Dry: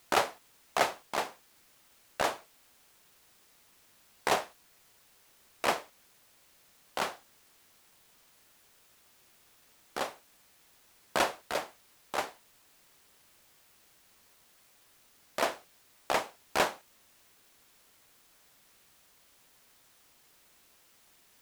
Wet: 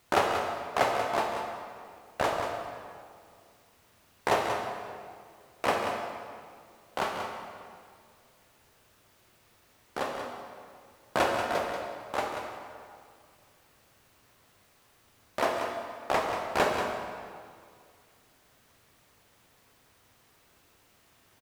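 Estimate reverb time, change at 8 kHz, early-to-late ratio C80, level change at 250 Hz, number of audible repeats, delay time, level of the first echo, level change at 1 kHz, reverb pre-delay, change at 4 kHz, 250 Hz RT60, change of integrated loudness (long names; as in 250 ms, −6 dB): 2.1 s, −3.0 dB, 2.5 dB, +5.5 dB, 1, 186 ms, −8.0 dB, +4.5 dB, 14 ms, −0.5 dB, 2.2 s, +2.0 dB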